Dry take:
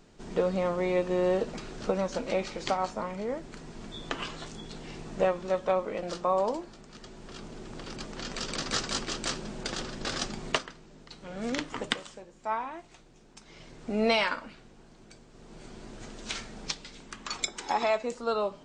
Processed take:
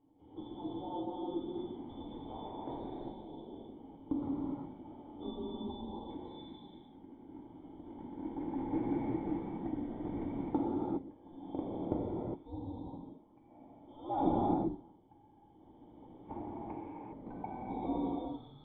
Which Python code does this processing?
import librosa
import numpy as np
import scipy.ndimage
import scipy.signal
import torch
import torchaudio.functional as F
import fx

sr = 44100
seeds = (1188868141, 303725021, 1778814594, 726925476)

y = fx.band_shuffle(x, sr, order='2413')
y = fx.formant_cascade(y, sr, vowel='u')
y = fx.rev_gated(y, sr, seeds[0], gate_ms=430, shape='flat', drr_db=-6.5)
y = y * 10.0 ** (9.5 / 20.0)